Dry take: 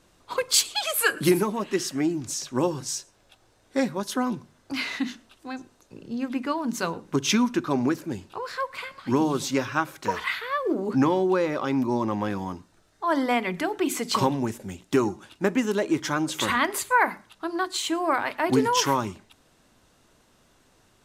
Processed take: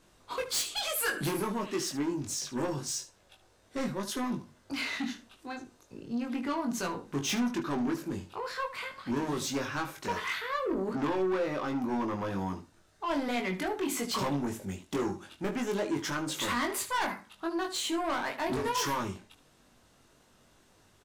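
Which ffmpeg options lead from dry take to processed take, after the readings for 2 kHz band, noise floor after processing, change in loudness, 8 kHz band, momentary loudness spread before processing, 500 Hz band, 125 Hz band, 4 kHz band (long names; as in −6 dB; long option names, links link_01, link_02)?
−7.0 dB, −64 dBFS, −7.0 dB, −6.0 dB, 11 LU, −7.5 dB, −6.5 dB, −6.0 dB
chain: -af "asoftclip=type=tanh:threshold=-25dB,aecho=1:1:21|75:0.631|0.211,volume=-3.5dB"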